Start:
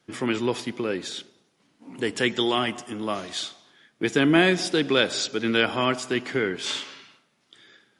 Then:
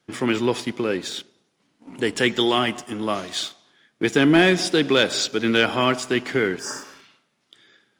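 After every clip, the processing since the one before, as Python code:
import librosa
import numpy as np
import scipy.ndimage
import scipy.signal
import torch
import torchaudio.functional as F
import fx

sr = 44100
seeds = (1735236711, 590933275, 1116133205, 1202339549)

y = fx.leveller(x, sr, passes=1)
y = fx.spec_repair(y, sr, seeds[0], start_s=6.61, length_s=0.4, low_hz=1900.0, high_hz=4700.0, source='after')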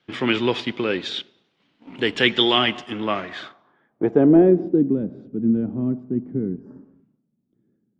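y = fx.filter_sweep_lowpass(x, sr, from_hz=3300.0, to_hz=220.0, start_s=2.88, end_s=5.0, q=1.9)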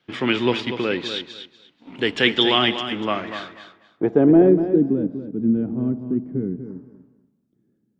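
y = fx.echo_feedback(x, sr, ms=242, feedback_pct=20, wet_db=-9.5)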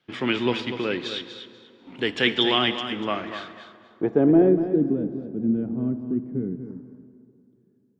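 y = fx.rev_plate(x, sr, seeds[1], rt60_s=3.1, hf_ratio=0.6, predelay_ms=0, drr_db=14.5)
y = F.gain(torch.from_numpy(y), -3.5).numpy()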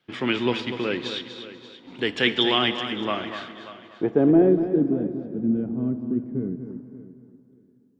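y = fx.echo_feedback(x, sr, ms=583, feedback_pct=21, wet_db=-16.0)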